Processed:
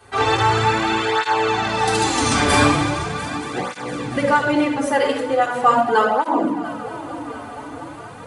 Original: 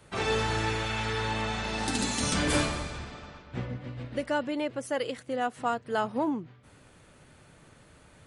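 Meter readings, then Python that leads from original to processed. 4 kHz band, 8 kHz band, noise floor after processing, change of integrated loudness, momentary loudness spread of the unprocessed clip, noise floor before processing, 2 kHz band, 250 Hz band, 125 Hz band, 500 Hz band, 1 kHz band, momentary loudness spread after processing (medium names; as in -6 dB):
+9.5 dB, +8.0 dB, -35 dBFS, +11.5 dB, 11 LU, -57 dBFS, +12.0 dB, +11.0 dB, +8.5 dB, +11.5 dB, +15.5 dB, 15 LU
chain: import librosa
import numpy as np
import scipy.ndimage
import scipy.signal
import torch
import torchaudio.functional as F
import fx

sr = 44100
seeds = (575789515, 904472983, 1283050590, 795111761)

p1 = fx.peak_eq(x, sr, hz=960.0, db=7.0, octaves=1.5)
p2 = p1 + fx.echo_heads(p1, sr, ms=231, heads='first and third', feedback_pct=67, wet_db=-18.0, dry=0)
p3 = fx.room_shoebox(p2, sr, seeds[0], volume_m3=2800.0, walls='furnished', distance_m=3.7)
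p4 = fx.rider(p3, sr, range_db=3, speed_s=2.0)
p5 = fx.low_shelf(p4, sr, hz=89.0, db=-11.0)
p6 = fx.flanger_cancel(p5, sr, hz=0.4, depth_ms=6.5)
y = F.gain(torch.from_numpy(p6), 9.0).numpy()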